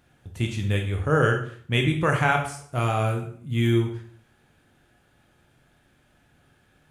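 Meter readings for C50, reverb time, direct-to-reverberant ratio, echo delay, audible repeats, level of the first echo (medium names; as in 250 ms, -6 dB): 7.5 dB, 0.55 s, 2.5 dB, no echo, no echo, no echo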